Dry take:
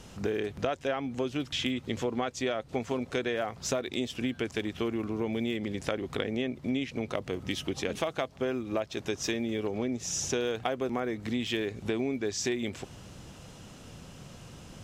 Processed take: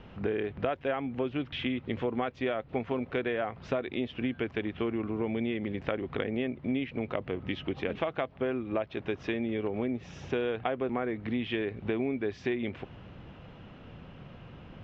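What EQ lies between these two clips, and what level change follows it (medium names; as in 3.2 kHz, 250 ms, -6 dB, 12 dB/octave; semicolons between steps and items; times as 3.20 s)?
low-pass 2.9 kHz 24 dB/octave; 0.0 dB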